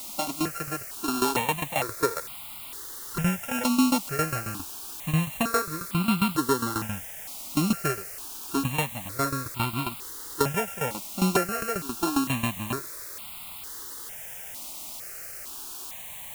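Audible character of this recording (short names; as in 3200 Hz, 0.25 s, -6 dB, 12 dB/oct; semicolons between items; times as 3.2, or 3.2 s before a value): a buzz of ramps at a fixed pitch in blocks of 32 samples; tremolo saw down 7.4 Hz, depth 85%; a quantiser's noise floor 8-bit, dither triangular; notches that jump at a steady rate 2.2 Hz 450–1700 Hz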